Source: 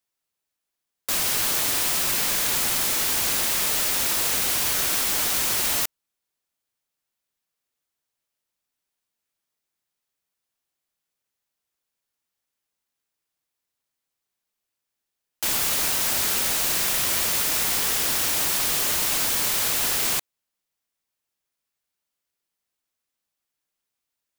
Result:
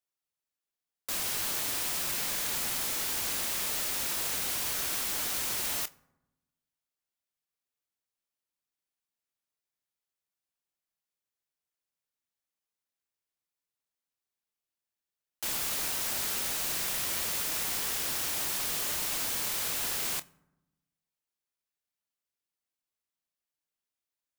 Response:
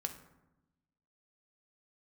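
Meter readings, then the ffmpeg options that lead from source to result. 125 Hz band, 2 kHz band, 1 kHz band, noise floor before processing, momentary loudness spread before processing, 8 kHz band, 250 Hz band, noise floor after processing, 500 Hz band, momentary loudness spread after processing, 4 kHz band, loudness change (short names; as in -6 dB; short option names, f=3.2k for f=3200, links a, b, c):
-8.5 dB, -9.0 dB, -9.0 dB, -84 dBFS, 2 LU, -9.0 dB, -9.0 dB, under -85 dBFS, -9.0 dB, 2 LU, -9.0 dB, -9.0 dB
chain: -filter_complex "[0:a]asplit=2[a][b];[1:a]atrim=start_sample=2205,adelay=27[c];[b][c]afir=irnorm=-1:irlink=0,volume=-13.5dB[d];[a][d]amix=inputs=2:normalize=0,volume=-9dB"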